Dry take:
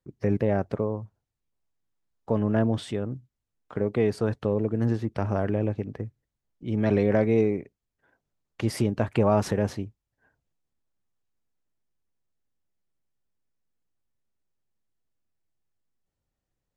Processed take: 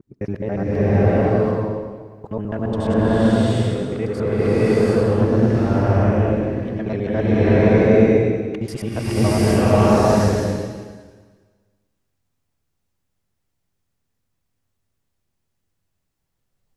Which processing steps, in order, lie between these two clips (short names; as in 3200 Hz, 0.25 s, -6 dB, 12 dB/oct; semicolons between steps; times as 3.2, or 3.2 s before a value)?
local time reversal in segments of 70 ms; bloom reverb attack 0.74 s, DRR -12 dB; gain -1.5 dB